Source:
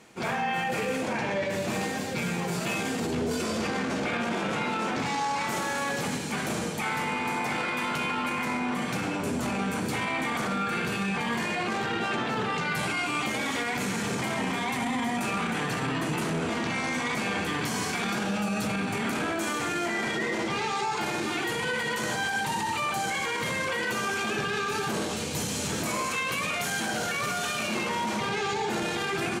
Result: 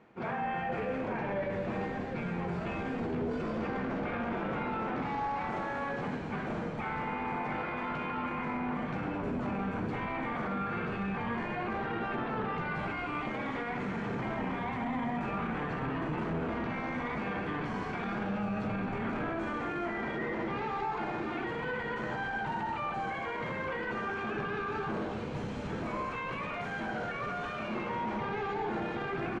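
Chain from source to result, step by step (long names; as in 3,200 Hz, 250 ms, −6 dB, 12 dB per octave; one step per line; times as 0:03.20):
low-pass filter 1,700 Hz 12 dB per octave
echo with shifted repeats 213 ms, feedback 52%, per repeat −91 Hz, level −11.5 dB
level −4.5 dB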